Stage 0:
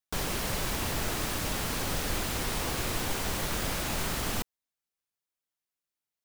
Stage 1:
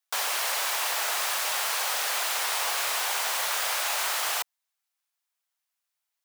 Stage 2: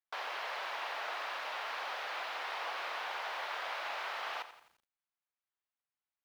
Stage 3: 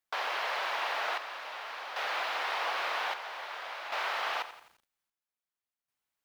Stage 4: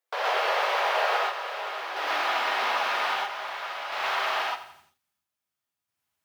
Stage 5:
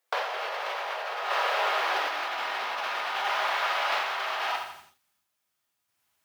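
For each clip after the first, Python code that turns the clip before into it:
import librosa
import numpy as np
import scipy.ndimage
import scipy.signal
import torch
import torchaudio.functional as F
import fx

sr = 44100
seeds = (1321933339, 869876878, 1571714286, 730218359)

y1 = scipy.signal.sosfilt(scipy.signal.butter(4, 680.0, 'highpass', fs=sr, output='sos'), x)
y1 = y1 * librosa.db_to_amplitude(6.5)
y2 = fx.air_absorb(y1, sr, metres=320.0)
y2 = fx.echo_crushed(y2, sr, ms=86, feedback_pct=55, bits=9, wet_db=-12.5)
y2 = y2 * librosa.db_to_amplitude(-6.0)
y3 = fx.chopper(y2, sr, hz=0.51, depth_pct=60, duty_pct=60)
y3 = y3 * librosa.db_to_amplitude(6.5)
y4 = fx.filter_sweep_highpass(y3, sr, from_hz=470.0, to_hz=93.0, start_s=1.42, end_s=3.82, q=3.6)
y4 = fx.rev_gated(y4, sr, seeds[0], gate_ms=150, shape='rising', drr_db=-4.5)
y5 = fx.low_shelf(y4, sr, hz=270.0, db=-5.0)
y5 = fx.over_compress(y5, sr, threshold_db=-33.0, ratio=-1.0)
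y5 = y5 * librosa.db_to_amplitude(3.0)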